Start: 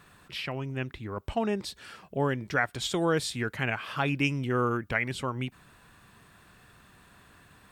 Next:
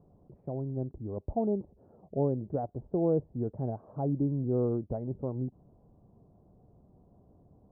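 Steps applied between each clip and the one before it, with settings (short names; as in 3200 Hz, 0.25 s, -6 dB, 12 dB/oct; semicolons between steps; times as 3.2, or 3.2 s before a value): steep low-pass 720 Hz 36 dB/oct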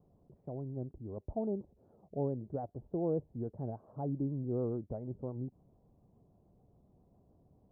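vibrato 7 Hz 63 cents; gain -6 dB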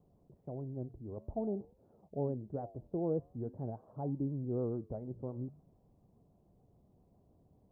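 flange 0.48 Hz, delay 3.8 ms, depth 9.5 ms, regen -88%; gain +3.5 dB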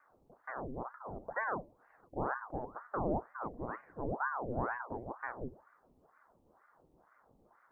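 notches 60/120/180/240/300/360/420 Hz; ring modulator with a swept carrier 730 Hz, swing 85%, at 2.1 Hz; gain +3 dB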